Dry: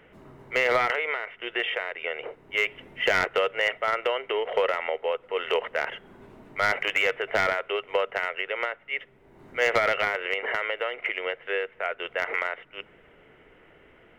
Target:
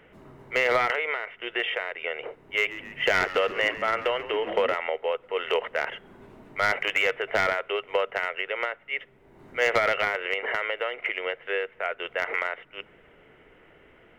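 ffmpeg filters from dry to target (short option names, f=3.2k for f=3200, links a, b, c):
-filter_complex "[0:a]asettb=1/sr,asplit=3[a][b][c];[a]atrim=end=2.454[d];[b]atrim=start=2.45:end=4.74,asetpts=PTS-STARTPTS,afade=t=in:d=0.004:c=qsin,afade=t=out:st=2.286:d=0.004:c=qsin,asplit=8[e][f][g][h][i][j][k][l];[f]adelay=137,afreqshift=-93,volume=-14.5dB[m];[g]adelay=274,afreqshift=-186,volume=-18.7dB[n];[h]adelay=411,afreqshift=-279,volume=-22.8dB[o];[i]adelay=548,afreqshift=-372,volume=-27dB[p];[j]adelay=685,afreqshift=-465,volume=-31.1dB[q];[k]adelay=822,afreqshift=-558,volume=-35.3dB[r];[l]adelay=959,afreqshift=-651,volume=-39.4dB[s];[e][m][n][o][p][q][r][s]amix=inputs=8:normalize=0,atrim=end_sample=100989[t];[c]atrim=start=4.736[u];[d][t]acrossfade=d=0.004:c1=hsin:c2=qsin[v];[v][u]acrossfade=d=0.004:c1=qsin:c2=hsin"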